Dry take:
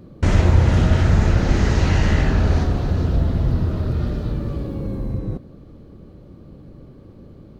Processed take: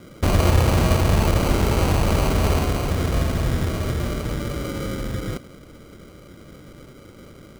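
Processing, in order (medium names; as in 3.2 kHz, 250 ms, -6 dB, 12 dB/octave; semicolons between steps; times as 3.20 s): peaking EQ 630 Hz +9 dB 1.9 oct; sample-and-hold 25×; trim -4 dB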